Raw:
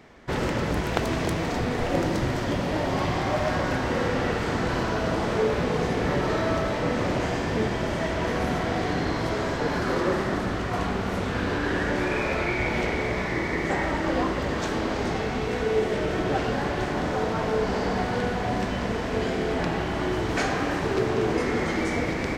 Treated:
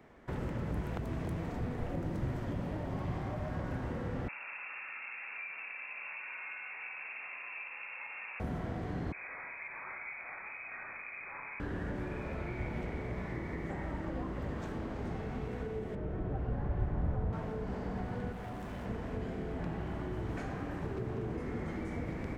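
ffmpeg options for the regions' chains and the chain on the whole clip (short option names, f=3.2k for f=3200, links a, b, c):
-filter_complex "[0:a]asettb=1/sr,asplit=3[a][b][c];[a]atrim=end=4.284[d];[b]atrim=start=4.28:end=8.4,asetpts=PTS-STARTPTS,afade=t=in:d=0.004:c=qsin,afade=t=out:st=4.116:d=0.004:c=qsin,lowpass=f=2.4k:t=q:w=0.5098,lowpass=f=2.4k:t=q:w=0.6013,lowpass=f=2.4k:t=q:w=0.9,lowpass=f=2.4k:t=q:w=2.563,afreqshift=-2800,highpass=f=850:p=1[e];[c]atrim=start=8.396[f];[d][e]acrossfade=d=0.004:c1=hsin:c2=qsin[g];[g][f]acrossfade=d=0.004:c1=qsin:c2=hsin,asettb=1/sr,asplit=3[h][i][j];[h]atrim=end=9.124[k];[i]atrim=start=9.12:end=11.6,asetpts=PTS-STARTPTS,afade=t=in:d=0.004:c=qsin,afade=t=out:st=2.476:d=0.004:c=qsin,acrossover=split=550[l][m];[l]aeval=exprs='val(0)*(1-0.5/2+0.5/2*cos(2*PI*2*n/s))':c=same[n];[m]aeval=exprs='val(0)*(1-0.5/2-0.5/2*cos(2*PI*2*n/s))':c=same[o];[n][o]amix=inputs=2:normalize=0,lowpass=f=2.2k:t=q:w=0.5098,lowpass=f=2.2k:t=q:w=0.6013,lowpass=f=2.2k:t=q:w=0.9,lowpass=f=2.2k:t=q:w=2.563,afreqshift=-2600[p];[j]atrim=start=11.596[q];[k][p]acrossfade=d=0.004:c1=hsin:c2=qsin[r];[r][q]acrossfade=d=0.004:c1=qsin:c2=hsin,asettb=1/sr,asplit=3[s][t][u];[s]atrim=end=15.954[v];[t]atrim=start=15.95:end=17.33,asetpts=PTS-STARTPTS,afade=t=in:d=0.004:c=qsin,afade=t=out:st=1.376:d=0.004:c=qsin,asubboost=boost=11:cutoff=120,lowpass=f=1k:p=1[w];[u]atrim=start=17.326[x];[v][w]acrossfade=d=0.004:c1=hsin:c2=qsin[y];[y][x]acrossfade=d=0.004:c1=qsin:c2=hsin,asettb=1/sr,asplit=3[z][aa][ab];[z]atrim=end=18.324[ac];[aa]atrim=start=18.32:end=18.86,asetpts=PTS-STARTPTS,afade=t=in:d=0.004:c=qsin,afade=t=out:st=0.536:d=0.004:c=qsin,highshelf=f=11k:g=8.5,asoftclip=type=hard:threshold=-30dB[ad];[ab]atrim=start=18.856[ae];[ac][ad]acrossfade=d=0.004:c1=hsin:c2=qsin[af];[af][ae]acrossfade=d=0.004:c1=qsin:c2=hsin,equalizer=f=4.9k:w=0.7:g=-10,acrossover=split=210[ag][ah];[ah]acompressor=threshold=-37dB:ratio=3[ai];[ag][ai]amix=inputs=2:normalize=0,volume=-6.5dB"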